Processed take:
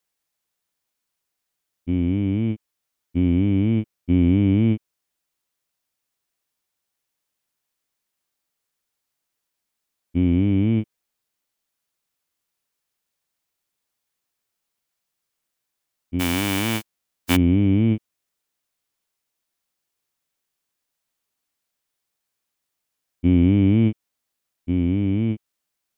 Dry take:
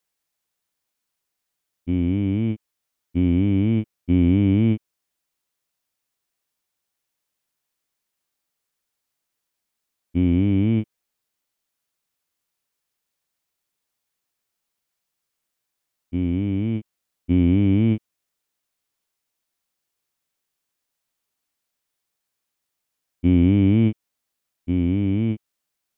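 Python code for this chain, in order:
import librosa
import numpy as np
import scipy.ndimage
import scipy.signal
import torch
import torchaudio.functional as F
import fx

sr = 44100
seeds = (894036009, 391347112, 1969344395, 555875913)

y = fx.envelope_flatten(x, sr, power=0.3, at=(16.19, 17.35), fade=0.02)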